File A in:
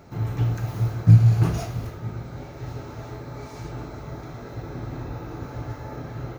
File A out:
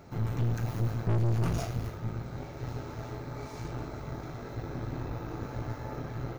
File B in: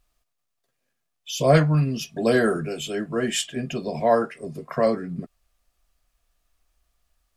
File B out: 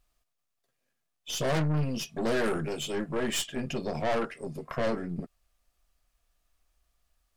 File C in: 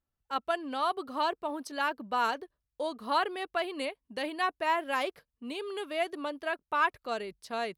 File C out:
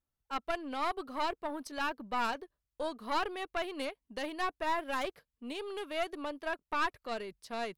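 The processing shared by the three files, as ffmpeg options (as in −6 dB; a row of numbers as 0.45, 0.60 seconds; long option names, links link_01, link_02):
-af "aeval=exprs='(tanh(17.8*val(0)+0.6)-tanh(0.6))/17.8':channel_layout=same"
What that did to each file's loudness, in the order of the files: −11.0, −8.0, −4.0 LU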